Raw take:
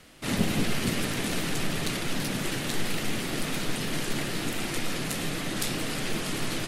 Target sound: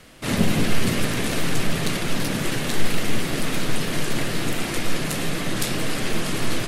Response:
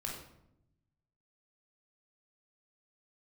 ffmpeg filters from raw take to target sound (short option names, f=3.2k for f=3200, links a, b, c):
-filter_complex "[0:a]asplit=2[a][b];[1:a]atrim=start_sample=2205,lowpass=2.8k[c];[b][c]afir=irnorm=-1:irlink=0,volume=-10dB[d];[a][d]amix=inputs=2:normalize=0,volume=4dB"